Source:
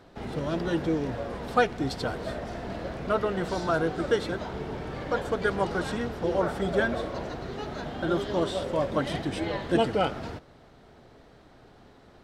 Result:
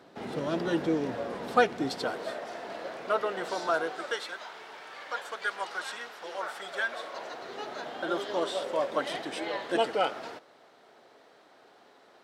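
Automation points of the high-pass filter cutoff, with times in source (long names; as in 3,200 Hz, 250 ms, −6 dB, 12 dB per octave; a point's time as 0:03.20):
0:01.78 200 Hz
0:02.39 480 Hz
0:03.71 480 Hz
0:04.30 1,100 Hz
0:06.83 1,100 Hz
0:07.59 460 Hz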